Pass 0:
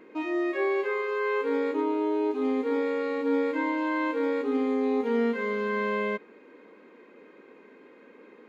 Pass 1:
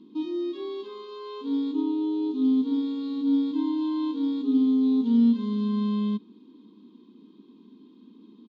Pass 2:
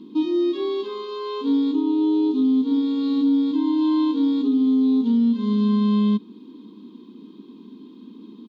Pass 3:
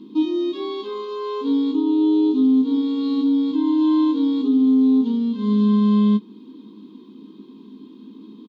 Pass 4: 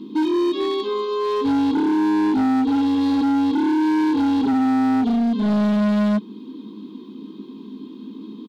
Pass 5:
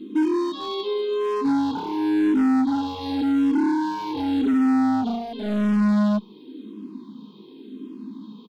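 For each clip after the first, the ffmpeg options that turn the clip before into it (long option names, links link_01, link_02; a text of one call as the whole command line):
ffmpeg -i in.wav -af "firequalizer=gain_entry='entry(110,0);entry(210,14);entry(320,5);entry(550,-26);entry(1000,-5);entry(1500,-23);entry(2100,-25);entry(3400,10);entry(8700,-15)':delay=0.05:min_phase=1,volume=-2.5dB" out.wav
ffmpeg -i in.wav -af "alimiter=limit=-22.5dB:level=0:latency=1:release=304,volume=9dB" out.wav
ffmpeg -i in.wav -filter_complex "[0:a]asplit=2[link_01][link_02];[link_02]adelay=19,volume=-8dB[link_03];[link_01][link_03]amix=inputs=2:normalize=0" out.wav
ffmpeg -i in.wav -af "volume=22.5dB,asoftclip=hard,volume=-22.5dB,volume=5.5dB" out.wav
ffmpeg -i in.wav -filter_complex "[0:a]asplit=2[link_01][link_02];[link_02]afreqshift=-0.91[link_03];[link_01][link_03]amix=inputs=2:normalize=1" out.wav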